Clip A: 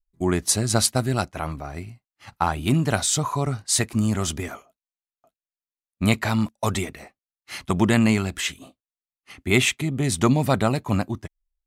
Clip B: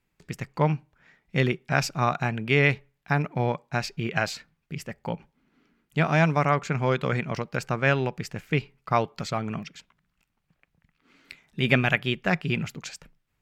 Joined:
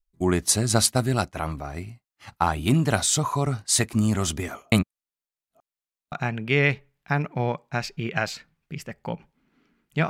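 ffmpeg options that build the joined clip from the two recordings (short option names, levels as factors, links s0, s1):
-filter_complex "[0:a]apad=whole_dur=10.09,atrim=end=10.09,asplit=2[s0][s1];[s0]atrim=end=4.722[s2];[s1]atrim=start=4.718:end=6.122,asetpts=PTS-STARTPTS,areverse[s3];[1:a]atrim=start=2.118:end=6.09[s4];[s2][s3]acrossfade=d=0.004:c1=hsin:c2=hsin[s5];[s5][s4]acrossfade=d=0.004:c1=hsin:c2=hsin"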